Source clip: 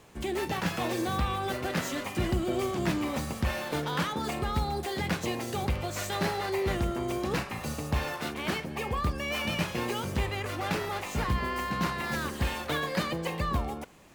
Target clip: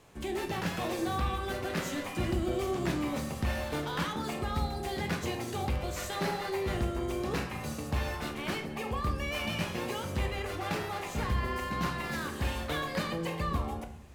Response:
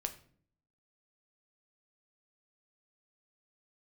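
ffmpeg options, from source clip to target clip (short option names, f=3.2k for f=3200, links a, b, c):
-filter_complex "[1:a]atrim=start_sample=2205,asetrate=28224,aresample=44100[a];[0:a][a]afir=irnorm=-1:irlink=0,volume=-5dB"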